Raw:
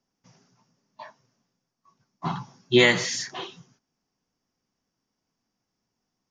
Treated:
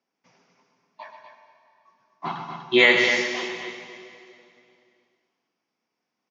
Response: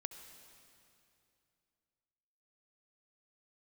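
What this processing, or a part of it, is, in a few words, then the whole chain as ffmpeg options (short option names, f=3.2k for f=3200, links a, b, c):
station announcement: -filter_complex "[0:a]highpass=300,lowpass=4.1k,equalizer=f=2.3k:t=o:w=0.32:g=6.5,aecho=1:1:128.3|244.9:0.355|0.398[a];[1:a]atrim=start_sample=2205[b];[a][b]afir=irnorm=-1:irlink=0,volume=4.5dB"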